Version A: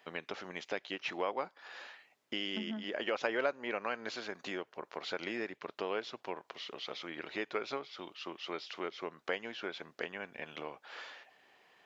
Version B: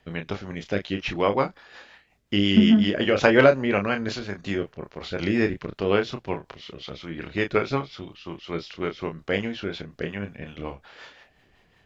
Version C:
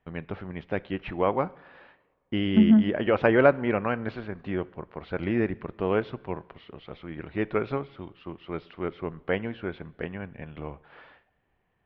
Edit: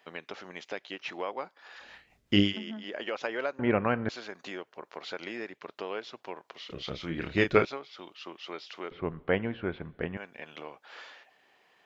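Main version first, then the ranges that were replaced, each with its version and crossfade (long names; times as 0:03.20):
A
0:01.81–0:02.47: punch in from B, crossfade 0.16 s
0:03.59–0:04.09: punch in from C
0:06.70–0:07.65: punch in from B
0:08.91–0:10.17: punch in from C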